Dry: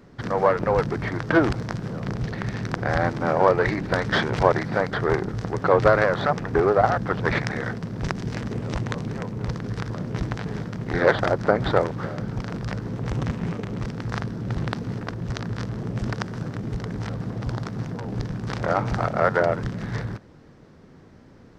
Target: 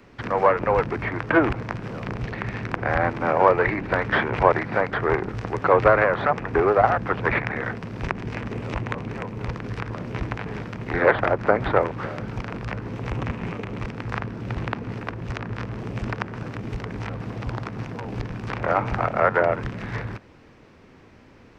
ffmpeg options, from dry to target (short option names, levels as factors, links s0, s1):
-filter_complex "[0:a]equalizer=f=160:t=o:w=0.67:g=-6,equalizer=f=1000:t=o:w=0.67:g=3,equalizer=f=2500:t=o:w=0.67:g=10,acrossover=split=310|710|2400[s0][s1][s2][s3];[s3]acompressor=threshold=0.00447:ratio=6[s4];[s0][s1][s2][s4]amix=inputs=4:normalize=0"